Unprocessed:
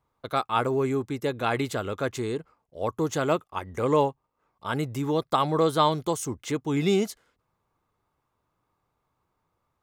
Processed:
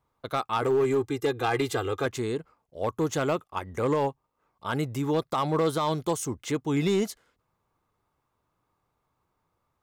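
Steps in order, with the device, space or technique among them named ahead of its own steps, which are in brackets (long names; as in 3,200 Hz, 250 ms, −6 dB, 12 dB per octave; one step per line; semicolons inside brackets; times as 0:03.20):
0:00.62–0:02.06: comb filter 2.5 ms, depth 78%
limiter into clipper (brickwall limiter −15 dBFS, peak gain reduction 7.5 dB; hard clipping −18.5 dBFS, distortion −20 dB)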